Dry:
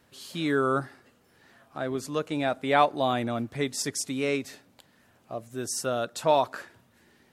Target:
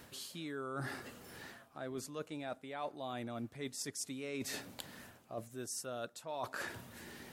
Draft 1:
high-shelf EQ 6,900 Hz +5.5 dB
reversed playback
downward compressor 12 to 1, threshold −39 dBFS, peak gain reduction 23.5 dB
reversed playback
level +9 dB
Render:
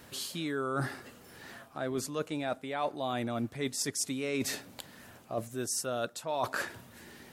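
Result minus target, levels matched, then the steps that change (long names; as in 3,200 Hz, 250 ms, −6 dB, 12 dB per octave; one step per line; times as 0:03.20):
downward compressor: peak gain reduction −8.5 dB
change: downward compressor 12 to 1, threshold −48.5 dBFS, peak gain reduction 32 dB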